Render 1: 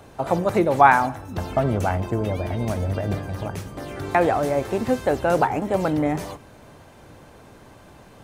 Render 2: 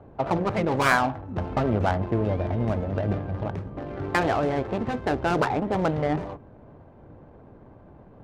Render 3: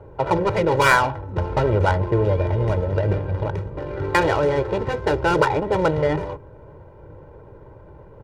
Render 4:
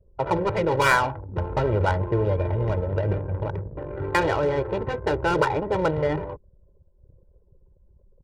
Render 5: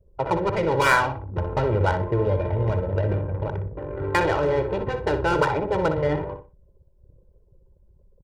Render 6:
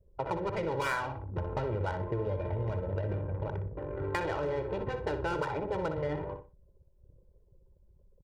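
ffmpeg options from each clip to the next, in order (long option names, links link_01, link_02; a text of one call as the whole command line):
ffmpeg -i in.wav -af "acrusher=bits=8:mode=log:mix=0:aa=0.000001,adynamicsmooth=sensitivity=2:basefreq=790,afftfilt=real='re*lt(hypot(re,im),0.794)':imag='im*lt(hypot(re,im),0.794)':win_size=1024:overlap=0.75" out.wav
ffmpeg -i in.wav -af "aecho=1:1:2.1:0.77,volume=3.5dB" out.wav
ffmpeg -i in.wav -af "anlmdn=25.1,volume=-3.5dB" out.wav
ffmpeg -i in.wav -filter_complex "[0:a]asplit=2[link_01][link_02];[link_02]adelay=61,lowpass=frequency=3600:poles=1,volume=-8dB,asplit=2[link_03][link_04];[link_04]adelay=61,lowpass=frequency=3600:poles=1,volume=0.26,asplit=2[link_05][link_06];[link_06]adelay=61,lowpass=frequency=3600:poles=1,volume=0.26[link_07];[link_01][link_03][link_05][link_07]amix=inputs=4:normalize=0" out.wav
ffmpeg -i in.wav -af "acompressor=threshold=-25dB:ratio=3,volume=-5.5dB" out.wav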